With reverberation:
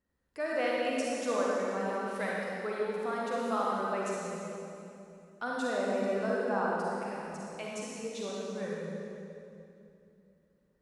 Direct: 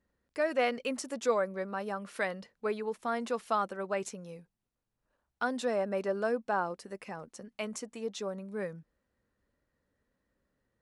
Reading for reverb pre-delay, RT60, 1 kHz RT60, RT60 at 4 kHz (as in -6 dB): 38 ms, 2.7 s, 2.5 s, 2.3 s